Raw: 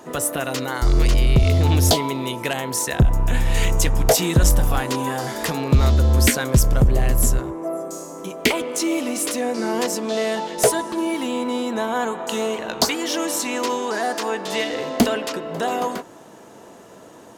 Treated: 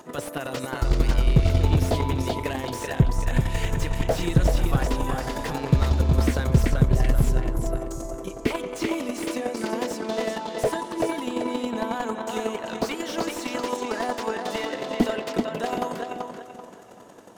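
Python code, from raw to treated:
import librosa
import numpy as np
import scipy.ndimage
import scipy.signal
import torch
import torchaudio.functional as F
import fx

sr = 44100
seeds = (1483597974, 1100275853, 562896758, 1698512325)

p1 = fx.chopper(x, sr, hz=11.0, depth_pct=60, duty_pct=15)
p2 = p1 + fx.echo_filtered(p1, sr, ms=385, feedback_pct=33, hz=4100.0, wet_db=-5.0, dry=0)
y = fx.slew_limit(p2, sr, full_power_hz=90.0)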